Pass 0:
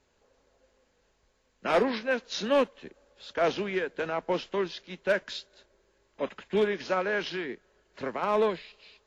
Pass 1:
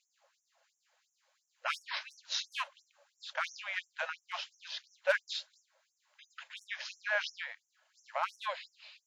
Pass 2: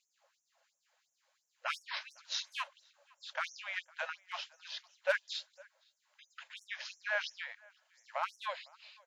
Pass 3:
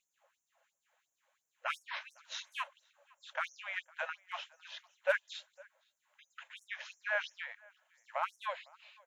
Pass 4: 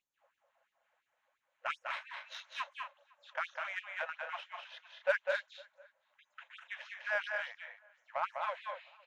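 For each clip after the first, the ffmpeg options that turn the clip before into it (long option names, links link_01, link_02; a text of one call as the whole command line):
ffmpeg -i in.wav -af "afftfilt=real='re*gte(b*sr/1024,500*pow(5600/500,0.5+0.5*sin(2*PI*2.9*pts/sr)))':imag='im*gte(b*sr/1024,500*pow(5600/500,0.5+0.5*sin(2*PI*2.9*pts/sr)))':win_size=1024:overlap=0.75" out.wav
ffmpeg -i in.wav -filter_complex "[0:a]asplit=2[link_01][link_02];[link_02]adelay=507.3,volume=-25dB,highshelf=frequency=4000:gain=-11.4[link_03];[link_01][link_03]amix=inputs=2:normalize=0,volume=-2dB" out.wav
ffmpeg -i in.wav -af "equalizer=frequency=4800:width_type=o:width=0.61:gain=-14.5,volume=1dB" out.wav
ffmpeg -i in.wav -af "aecho=1:1:201.2|239.1:0.631|0.355,adynamicsmooth=sensitivity=2.5:basefreq=3600" out.wav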